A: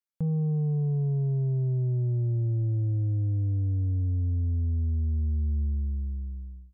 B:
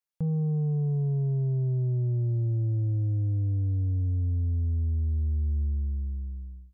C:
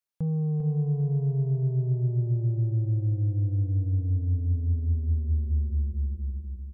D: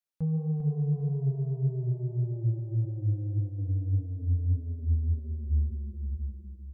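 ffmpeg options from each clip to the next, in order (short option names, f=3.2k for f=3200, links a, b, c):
-af "equalizer=f=230:t=o:w=0.3:g=-5"
-af "aecho=1:1:397|794|1191|1588|1985:0.447|0.179|0.0715|0.0286|0.0114"
-af "flanger=delay=4.9:depth=8.6:regen=21:speed=1.7:shape=sinusoidal"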